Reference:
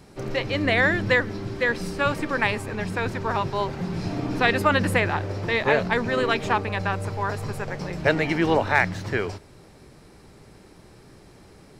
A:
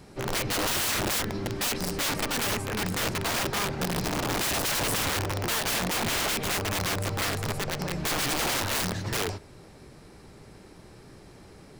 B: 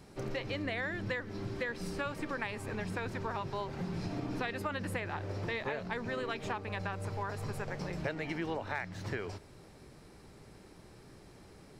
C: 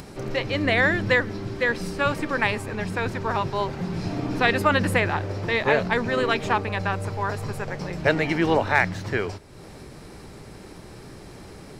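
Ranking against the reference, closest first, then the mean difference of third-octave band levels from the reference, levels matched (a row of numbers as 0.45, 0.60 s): C, B, A; 1.5, 4.0, 9.5 dB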